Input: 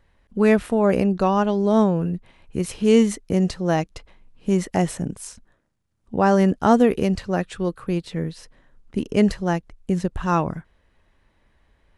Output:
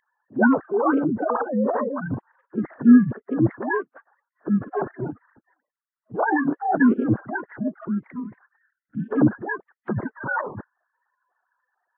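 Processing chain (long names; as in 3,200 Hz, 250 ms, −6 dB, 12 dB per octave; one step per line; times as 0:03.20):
three sine waves on the formant tracks
phase-vocoder pitch shift with formants kept −10 semitones
gain on a spectral selection 0:08.56–0:09.09, 320–1,300 Hz −20 dB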